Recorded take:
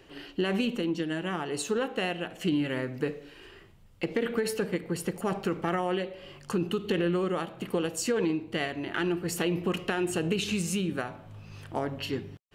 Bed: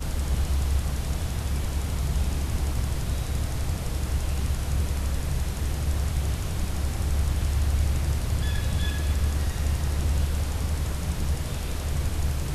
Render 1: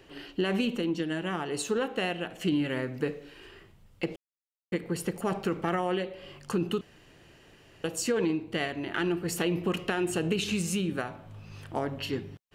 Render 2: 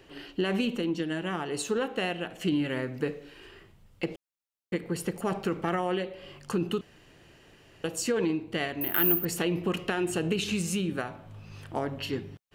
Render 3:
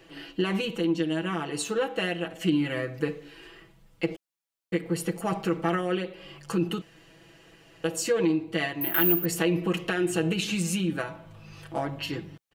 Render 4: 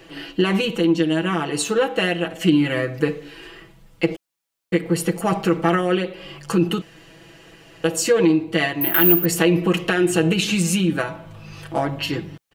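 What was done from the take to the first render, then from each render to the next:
4.16–4.72 s: mute; 6.81–7.84 s: room tone
8.81–9.25 s: careless resampling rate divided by 3×, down none, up zero stuff
bass shelf 140 Hz -4 dB; comb 6.1 ms, depth 83%
trim +8 dB; peak limiter -1 dBFS, peak gain reduction 2 dB

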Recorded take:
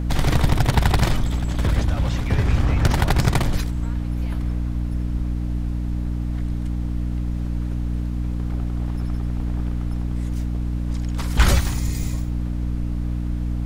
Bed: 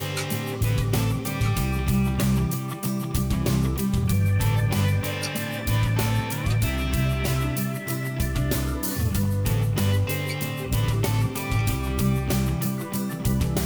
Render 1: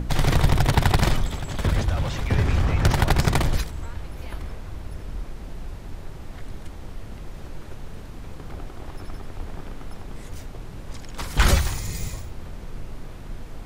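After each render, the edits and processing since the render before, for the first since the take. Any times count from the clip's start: hum notches 60/120/180/240/300 Hz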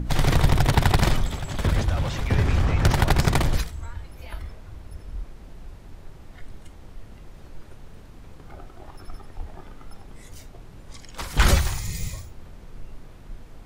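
noise print and reduce 7 dB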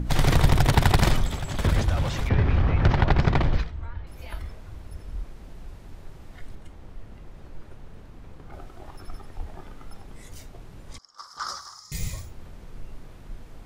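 2.29–4.07 s: distance through air 240 m; 6.55–8.53 s: treble shelf 3.5 kHz -7 dB; 10.98–11.92 s: two resonant band-passes 2.5 kHz, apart 2.1 oct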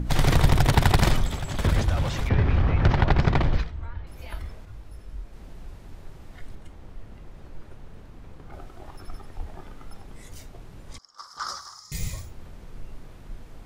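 4.65–5.33 s: detune thickener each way 12 cents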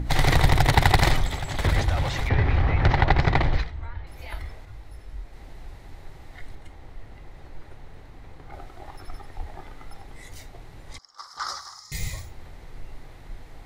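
graphic EQ with 31 bands 200 Hz -9 dB, 800 Hz +6 dB, 2 kHz +8 dB, 4 kHz +5 dB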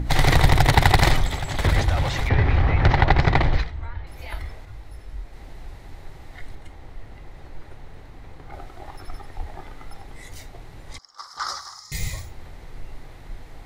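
trim +2.5 dB; peak limiter -2 dBFS, peak gain reduction 0.5 dB

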